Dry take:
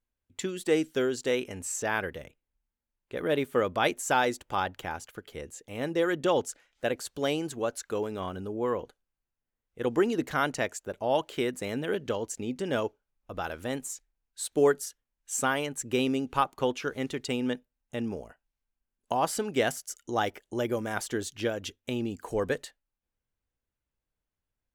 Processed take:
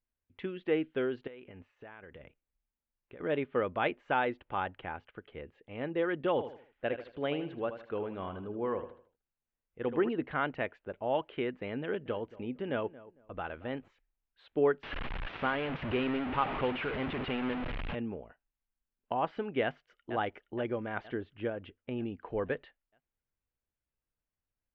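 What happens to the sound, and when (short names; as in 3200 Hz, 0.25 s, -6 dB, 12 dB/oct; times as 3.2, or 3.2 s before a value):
1.27–3.2 compressor 16:1, threshold -40 dBFS
6.31–10.09 feedback echo 78 ms, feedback 36%, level -10.5 dB
11.83–13.88 darkening echo 0.226 s, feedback 24%, low-pass 1500 Hz, level -18 dB
14.83–17.95 delta modulation 32 kbps, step -24.5 dBFS
19.63–20.06 echo throw 0.47 s, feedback 55%, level -8.5 dB
21.14–21.98 high shelf 2900 Hz -11.5 dB
whole clip: steep low-pass 3000 Hz 36 dB/oct; gain -4.5 dB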